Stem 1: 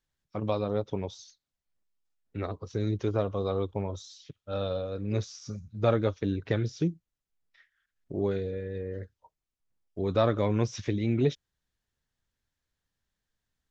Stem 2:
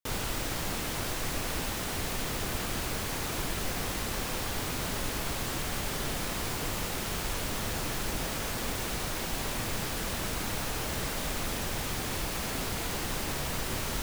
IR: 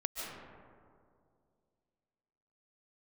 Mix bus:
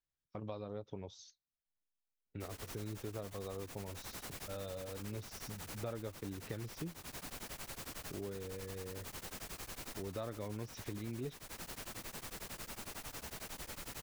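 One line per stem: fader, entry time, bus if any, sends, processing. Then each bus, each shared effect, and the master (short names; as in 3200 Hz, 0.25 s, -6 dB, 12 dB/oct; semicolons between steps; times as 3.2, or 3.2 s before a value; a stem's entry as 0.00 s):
-4.5 dB, 0.00 s, no send, gate -52 dBFS, range -8 dB
-3.0 dB, 2.35 s, no send, bell 3400 Hz -6 dB 0.28 oct; wavefolder -33.5 dBFS; beating tremolo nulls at 11 Hz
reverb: off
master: compressor 2.5:1, threshold -45 dBFS, peak gain reduction 14.5 dB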